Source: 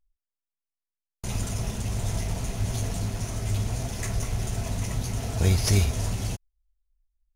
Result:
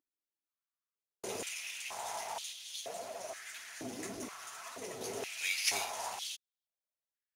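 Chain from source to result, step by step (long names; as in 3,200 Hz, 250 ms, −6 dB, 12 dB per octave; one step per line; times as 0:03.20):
0:02.53–0:05.01: flanger 1.8 Hz, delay 2.7 ms, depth 6 ms, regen +33%
high-pass on a step sequencer 2.1 Hz 300–3,400 Hz
level −5.5 dB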